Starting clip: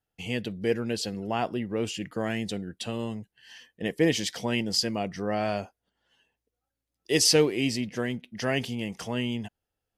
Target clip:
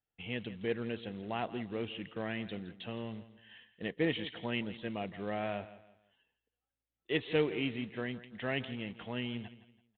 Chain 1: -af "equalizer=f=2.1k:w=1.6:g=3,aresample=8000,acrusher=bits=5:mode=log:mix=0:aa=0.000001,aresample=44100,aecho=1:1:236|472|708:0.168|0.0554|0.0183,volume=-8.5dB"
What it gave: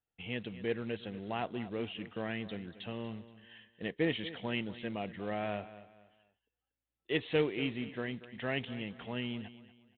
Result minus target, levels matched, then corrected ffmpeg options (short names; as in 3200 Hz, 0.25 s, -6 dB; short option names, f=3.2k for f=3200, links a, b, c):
echo 70 ms late
-af "equalizer=f=2.1k:w=1.6:g=3,aresample=8000,acrusher=bits=5:mode=log:mix=0:aa=0.000001,aresample=44100,aecho=1:1:166|332|498:0.168|0.0554|0.0183,volume=-8.5dB"